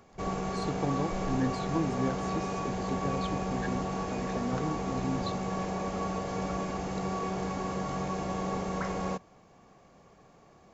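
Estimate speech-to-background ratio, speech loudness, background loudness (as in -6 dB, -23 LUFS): -2.5 dB, -36.0 LUFS, -33.5 LUFS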